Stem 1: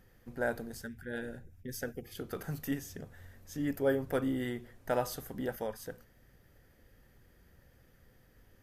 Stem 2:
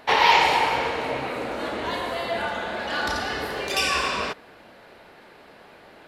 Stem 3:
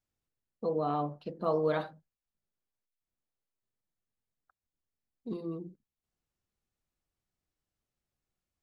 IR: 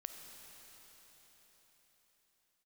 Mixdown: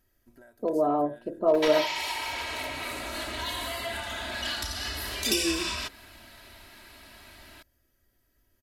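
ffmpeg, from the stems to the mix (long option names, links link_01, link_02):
-filter_complex "[0:a]highshelf=frequency=4400:gain=10,acompressor=threshold=-41dB:ratio=16,volume=-11.5dB[link_01];[1:a]asubboost=boost=8:cutoff=150,acompressor=threshold=-28dB:ratio=12,crystalizer=i=7:c=0,adelay=1550,volume=-8.5dB[link_02];[2:a]equalizer=frequency=125:width_type=o:width=1:gain=5,equalizer=frequency=500:width_type=o:width=1:gain=12,equalizer=frequency=4000:width_type=o:width=1:gain=-12,asoftclip=type=hard:threshold=-12dB,volume=-1dB[link_03];[link_01][link_02][link_03]amix=inputs=3:normalize=0,aecho=1:1:3.1:0.73"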